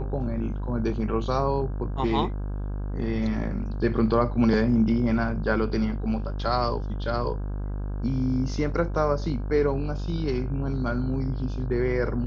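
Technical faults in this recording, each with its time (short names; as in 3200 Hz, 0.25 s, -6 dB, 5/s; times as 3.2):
buzz 50 Hz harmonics 33 -30 dBFS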